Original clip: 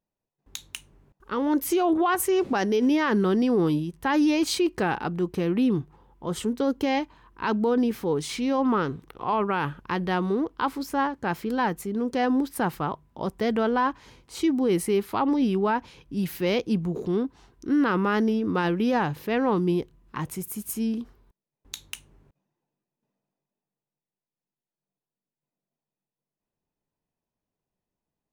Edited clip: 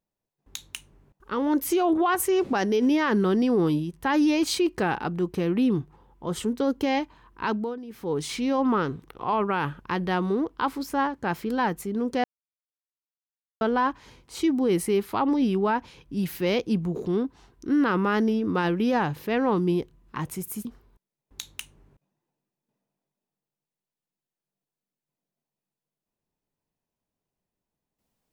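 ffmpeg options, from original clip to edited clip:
-filter_complex "[0:a]asplit=6[a][b][c][d][e][f];[a]atrim=end=7.79,asetpts=PTS-STARTPTS,afade=t=out:st=7.45:d=0.34:silence=0.141254[g];[b]atrim=start=7.79:end=7.87,asetpts=PTS-STARTPTS,volume=-17dB[h];[c]atrim=start=7.87:end=12.24,asetpts=PTS-STARTPTS,afade=t=in:d=0.34:silence=0.141254,afade=t=out:st=4.366:d=0.004:c=hsin[i];[d]atrim=start=12.24:end=13.61,asetpts=PTS-STARTPTS,volume=0[j];[e]atrim=start=13.61:end=20.652,asetpts=PTS-STARTPTS,afade=t=in:d=0.004:c=hsin[k];[f]atrim=start=20.988[l];[g][h][i][j][k]concat=n=5:v=0:a=1[m];[m][l]acrossfade=d=0.004:c1=hsin:c2=hsin"

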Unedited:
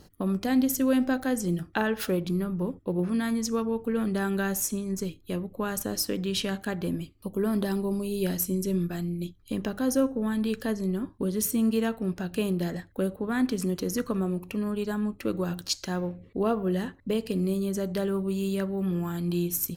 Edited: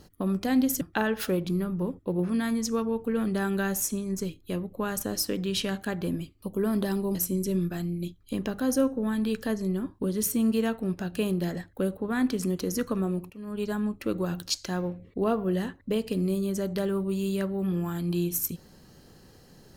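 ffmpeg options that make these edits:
-filter_complex "[0:a]asplit=4[a][b][c][d];[a]atrim=end=0.812[e];[b]atrim=start=1.608:end=7.952[f];[c]atrim=start=8.338:end=14.49,asetpts=PTS-STARTPTS,afade=t=out:st=6.148:d=0.004:c=hsin:silence=0.177828[g];[d]atrim=start=14.49,asetpts=PTS-STARTPTS,afade=t=in:d=0.32:c=qua:silence=0.177828[h];[e][f]acrossfade=d=0.004:c1=hsin:c2=hsin[i];[g][h]concat=n=2:v=0:a=1[j];[i][j]acrossfade=d=0.004:c1=hsin:c2=hsin"

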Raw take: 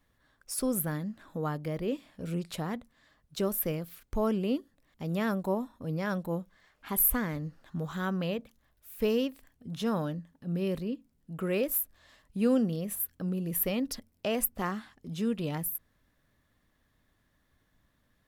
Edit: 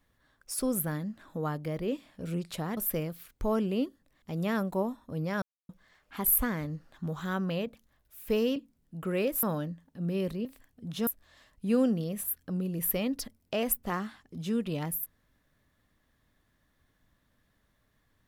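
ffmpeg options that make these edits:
-filter_complex "[0:a]asplit=8[a][b][c][d][e][f][g][h];[a]atrim=end=2.772[i];[b]atrim=start=3.488:end=6.14,asetpts=PTS-STARTPTS,afade=t=out:st=2.648:d=0.004:c=hsin[j];[c]atrim=start=6.14:end=6.41,asetpts=PTS-STARTPTS,volume=0[k];[d]atrim=start=6.41:end=9.282,asetpts=PTS-STARTPTS,afade=t=in:d=0.004:c=hsin[l];[e]atrim=start=10.918:end=11.792[m];[f]atrim=start=9.898:end=10.922[n];[g]atrim=start=9.278:end=9.902[o];[h]atrim=start=11.788[p];[j][k][l]concat=n=3:v=0:a=1[q];[i][q]acrossfade=d=0.004:c1=hsin:c2=hsin[r];[r][m]acrossfade=d=0.004:c1=hsin:c2=hsin[s];[s][n]acrossfade=d=0.004:c1=hsin:c2=hsin[t];[t][o]acrossfade=d=0.004:c1=hsin:c2=hsin[u];[u][p]acrossfade=d=0.004:c1=hsin:c2=hsin"

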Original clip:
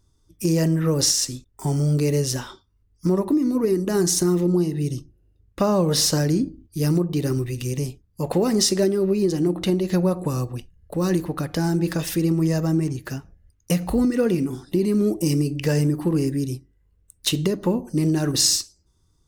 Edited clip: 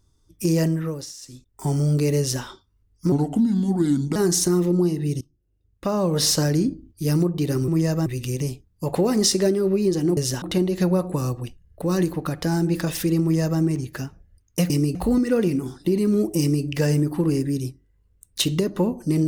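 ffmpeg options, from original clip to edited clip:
-filter_complex "[0:a]asplit=12[a][b][c][d][e][f][g][h][i][j][k][l];[a]atrim=end=1.06,asetpts=PTS-STARTPTS,afade=t=out:st=0.61:d=0.45:silence=0.112202[m];[b]atrim=start=1.06:end=1.22,asetpts=PTS-STARTPTS,volume=-19dB[n];[c]atrim=start=1.22:end=3.124,asetpts=PTS-STARTPTS,afade=t=in:d=0.45:silence=0.112202[o];[d]atrim=start=3.12:end=3.91,asetpts=PTS-STARTPTS,asetrate=33516,aresample=44100[p];[e]atrim=start=3.906:end=4.96,asetpts=PTS-STARTPTS,afade=t=out:st=1.05:d=0.004:c=hsin:silence=0.0749894[q];[f]atrim=start=4.96:end=7.432,asetpts=PTS-STARTPTS,afade=t=in:d=1.1:silence=0.0749894[r];[g]atrim=start=12.338:end=12.722[s];[h]atrim=start=7.428:end=9.542[t];[i]atrim=start=2.188:end=2.442[u];[j]atrim=start=9.538:end=13.822[v];[k]atrim=start=15.268:end=15.522[w];[l]atrim=start=13.818[x];[m][n][o]concat=n=3:v=0:a=1[y];[y][p]acrossfade=d=0.004:c1=hsin:c2=hsin[z];[q][r]concat=n=2:v=0:a=1[aa];[z][aa]acrossfade=d=0.004:c1=hsin:c2=hsin[ab];[ab][s]acrossfade=d=0.004:c1=hsin:c2=hsin[ac];[ac][t]acrossfade=d=0.004:c1=hsin:c2=hsin[ad];[ad][u]acrossfade=d=0.004:c1=hsin:c2=hsin[ae];[ae][v]acrossfade=d=0.004:c1=hsin:c2=hsin[af];[af][w]acrossfade=d=0.004:c1=hsin:c2=hsin[ag];[ag][x]acrossfade=d=0.004:c1=hsin:c2=hsin"

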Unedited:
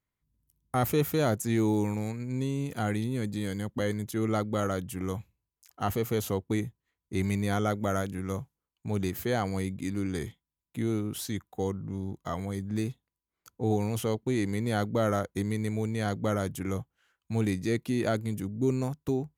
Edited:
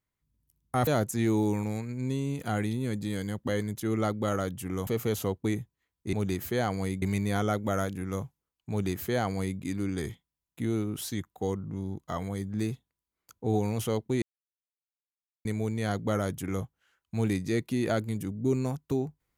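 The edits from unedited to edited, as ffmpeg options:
-filter_complex "[0:a]asplit=7[a][b][c][d][e][f][g];[a]atrim=end=0.872[h];[b]atrim=start=1.178:end=5.182[i];[c]atrim=start=5.928:end=7.192[j];[d]atrim=start=8.868:end=9.762[k];[e]atrim=start=7.188:end=14.39,asetpts=PTS-STARTPTS,afade=t=out:st=7.198:d=0.004:c=hsin[l];[f]atrim=start=14.39:end=15.62,asetpts=PTS-STARTPTS,volume=0[m];[g]atrim=start=15.62,asetpts=PTS-STARTPTS,afade=t=in:d=0.004:c=hsin[n];[h][i]acrossfade=d=0.004:c1=hsin:c2=hsin[o];[o][j]acrossfade=d=0.004:c1=hsin:c2=hsin[p];[p][k]acrossfade=d=0.004:c1=hsin:c2=hsin[q];[l][m][n]concat=n=3:v=0:a=1[r];[q][r]acrossfade=d=0.004:c1=hsin:c2=hsin"

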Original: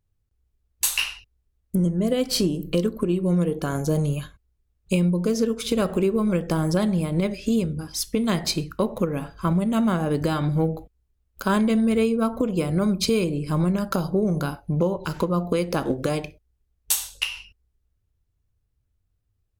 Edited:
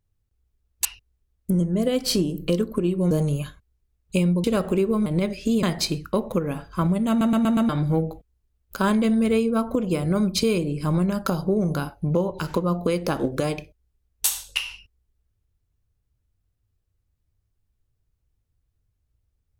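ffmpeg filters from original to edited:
-filter_complex "[0:a]asplit=11[a][b][c][d][e][f][g][h][i][j][k];[a]atrim=end=0.852[l];[b]atrim=start=1.098:end=3.362[m];[c]atrim=start=3.878:end=5.212[n];[d]atrim=start=5.688:end=6.312[o];[e]atrim=start=7.068:end=7.642[p];[f]atrim=start=8.288:end=9.872[q];[g]atrim=start=9.748:end=9.872[r];[h]atrim=start=9.748:end=9.872[s];[i]atrim=start=9.748:end=9.872[t];[j]atrim=start=9.748:end=9.872[u];[k]atrim=start=10.348[v];[l][m]acrossfade=d=0.004:c1=hsin:c2=hsin[w];[w][n]acrossfade=d=0.004:c1=hsin:c2=hsin[x];[x][o]acrossfade=d=0.004:c1=hsin:c2=hsin[y];[y][p]acrossfade=d=0.004:c1=hsin:c2=hsin[z];[z][q]acrossfade=d=0.004:c1=hsin:c2=hsin[aa];[aa][r]acrossfade=d=0.004:c1=hsin:c2=hsin[ab];[ab][s]acrossfade=d=0.004:c1=hsin:c2=hsin[ac];[ac][t]acrossfade=d=0.004:c1=hsin:c2=hsin[ad];[ad][u]acrossfade=d=0.004:c1=hsin:c2=hsin[ae];[ae][v]acrossfade=d=0.004:c1=hsin:c2=hsin"

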